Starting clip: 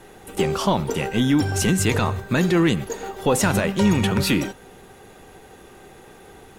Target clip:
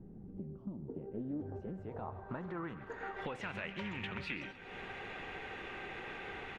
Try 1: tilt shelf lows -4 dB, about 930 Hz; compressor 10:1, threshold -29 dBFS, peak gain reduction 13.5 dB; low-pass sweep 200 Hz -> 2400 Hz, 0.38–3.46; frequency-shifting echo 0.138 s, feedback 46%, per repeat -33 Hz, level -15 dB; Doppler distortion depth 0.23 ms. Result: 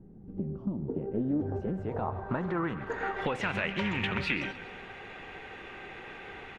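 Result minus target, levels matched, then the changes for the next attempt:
compressor: peak gain reduction -10.5 dB
change: compressor 10:1, threshold -40.5 dBFS, peak gain reduction 24 dB

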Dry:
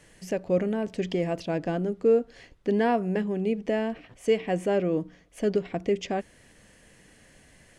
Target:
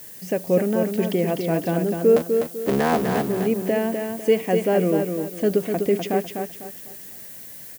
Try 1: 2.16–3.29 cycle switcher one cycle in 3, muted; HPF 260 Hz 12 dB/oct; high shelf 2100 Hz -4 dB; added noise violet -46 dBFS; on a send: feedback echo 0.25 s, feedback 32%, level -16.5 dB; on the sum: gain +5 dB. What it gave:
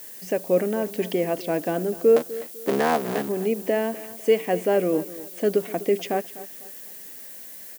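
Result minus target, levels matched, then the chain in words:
echo-to-direct -11 dB; 125 Hz band -6.0 dB
2.16–3.29 cycle switcher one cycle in 3, muted; HPF 100 Hz 12 dB/oct; high shelf 2100 Hz -4 dB; added noise violet -46 dBFS; on a send: feedback echo 0.25 s, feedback 32%, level -5.5 dB; on the sum: gain +5 dB

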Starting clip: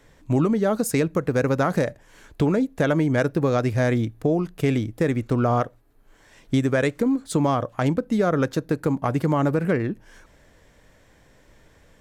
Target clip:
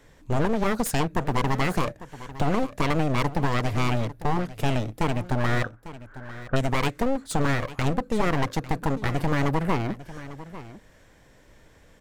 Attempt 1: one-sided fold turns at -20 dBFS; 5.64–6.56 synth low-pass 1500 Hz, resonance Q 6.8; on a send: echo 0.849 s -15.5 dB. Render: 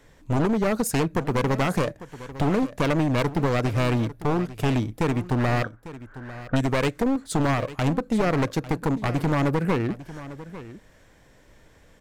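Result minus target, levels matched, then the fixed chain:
one-sided fold: distortion -10 dB
one-sided fold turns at -26.5 dBFS; 5.64–6.56 synth low-pass 1500 Hz, resonance Q 6.8; on a send: echo 0.849 s -15.5 dB

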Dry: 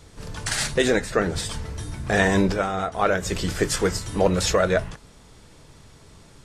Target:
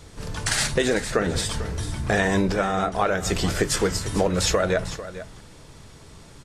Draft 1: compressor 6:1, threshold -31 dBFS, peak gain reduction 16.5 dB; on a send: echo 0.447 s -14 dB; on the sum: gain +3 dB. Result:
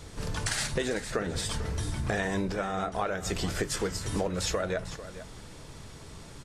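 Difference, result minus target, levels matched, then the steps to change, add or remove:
compressor: peak gain reduction +8.5 dB
change: compressor 6:1, threshold -20.5 dBFS, peak gain reduction 7.5 dB

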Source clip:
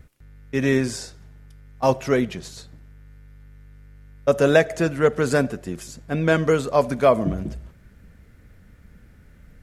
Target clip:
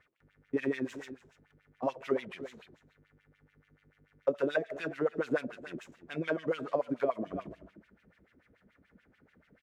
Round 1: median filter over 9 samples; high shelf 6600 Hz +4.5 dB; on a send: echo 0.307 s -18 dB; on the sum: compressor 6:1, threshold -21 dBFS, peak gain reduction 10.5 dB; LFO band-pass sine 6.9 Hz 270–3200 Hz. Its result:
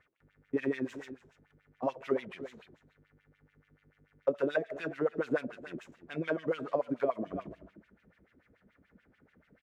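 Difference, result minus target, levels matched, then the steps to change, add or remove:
8000 Hz band -3.5 dB
add after compressor: high shelf 3100 Hz +4.5 dB

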